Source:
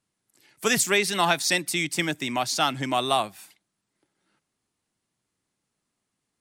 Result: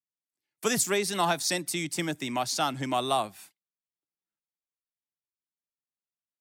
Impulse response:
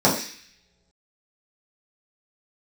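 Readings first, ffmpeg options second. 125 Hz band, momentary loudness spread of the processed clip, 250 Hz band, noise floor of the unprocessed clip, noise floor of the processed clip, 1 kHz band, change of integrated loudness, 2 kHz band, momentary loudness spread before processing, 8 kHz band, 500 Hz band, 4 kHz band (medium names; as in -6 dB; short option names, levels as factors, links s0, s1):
-2.5 dB, 6 LU, -2.5 dB, -81 dBFS, under -85 dBFS, -3.0 dB, -4.5 dB, -8.0 dB, 6 LU, -3.0 dB, -2.5 dB, -5.5 dB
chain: -filter_complex "[0:a]agate=range=0.0447:threshold=0.00398:ratio=16:detection=peak,acrossover=split=110|1500|3800[s0][s1][s2][s3];[s2]acompressor=threshold=0.0141:ratio=6[s4];[s0][s1][s4][s3]amix=inputs=4:normalize=0,volume=0.75"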